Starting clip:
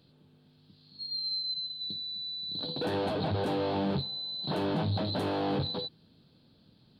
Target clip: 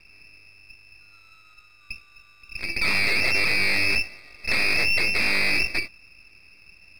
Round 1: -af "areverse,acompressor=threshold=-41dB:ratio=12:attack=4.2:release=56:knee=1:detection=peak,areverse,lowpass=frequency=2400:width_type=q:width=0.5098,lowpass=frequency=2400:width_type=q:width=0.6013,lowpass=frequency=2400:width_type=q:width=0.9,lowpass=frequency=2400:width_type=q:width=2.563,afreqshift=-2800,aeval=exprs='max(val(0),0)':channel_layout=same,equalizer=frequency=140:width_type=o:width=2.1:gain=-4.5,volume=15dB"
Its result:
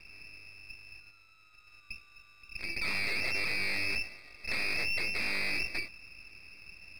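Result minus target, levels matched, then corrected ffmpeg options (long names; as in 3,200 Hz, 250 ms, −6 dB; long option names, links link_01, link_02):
downward compressor: peak gain reduction +10.5 dB
-af "areverse,acompressor=threshold=-29.5dB:ratio=12:attack=4.2:release=56:knee=1:detection=peak,areverse,lowpass=frequency=2400:width_type=q:width=0.5098,lowpass=frequency=2400:width_type=q:width=0.6013,lowpass=frequency=2400:width_type=q:width=0.9,lowpass=frequency=2400:width_type=q:width=2.563,afreqshift=-2800,aeval=exprs='max(val(0),0)':channel_layout=same,equalizer=frequency=140:width_type=o:width=2.1:gain=-4.5,volume=15dB"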